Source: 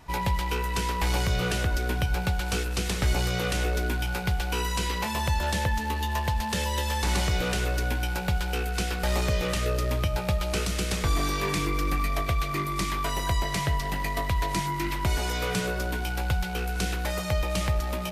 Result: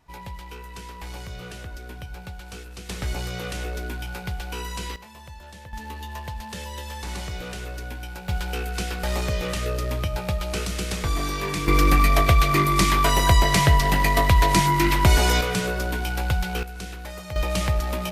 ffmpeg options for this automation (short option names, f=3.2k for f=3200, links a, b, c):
-af "asetnsamples=n=441:p=0,asendcmd='2.89 volume volume -4dB;4.96 volume volume -16.5dB;5.73 volume volume -7dB;8.29 volume volume 0dB;11.68 volume volume 9.5dB;15.41 volume volume 3dB;16.63 volume volume -7dB;17.36 volume volume 3dB',volume=-11dB"